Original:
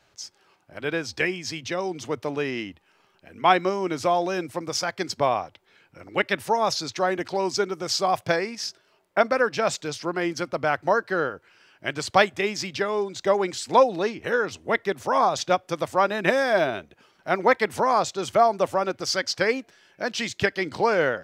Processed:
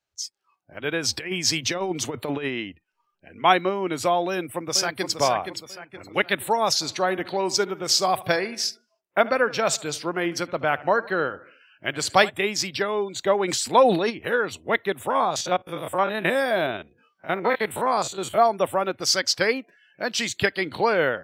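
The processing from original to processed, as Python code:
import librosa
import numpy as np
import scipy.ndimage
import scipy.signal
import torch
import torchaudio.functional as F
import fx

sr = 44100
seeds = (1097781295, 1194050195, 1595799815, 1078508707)

y = fx.over_compress(x, sr, threshold_db=-29.0, ratio=-0.5, at=(1.02, 2.47), fade=0.02)
y = fx.echo_throw(y, sr, start_s=4.28, length_s=0.91, ms=470, feedback_pct=45, wet_db=-7.0)
y = fx.echo_feedback(y, sr, ms=75, feedback_pct=54, wet_db=-19.0, at=(6.8, 12.29), fade=0.02)
y = fx.sustainer(y, sr, db_per_s=67.0, at=(13.47, 14.09), fade=0.02)
y = fx.spec_steps(y, sr, hold_ms=50, at=(15.1, 18.38))
y = fx.noise_reduce_blind(y, sr, reduce_db=24)
y = fx.high_shelf(y, sr, hz=4700.0, db=10.0)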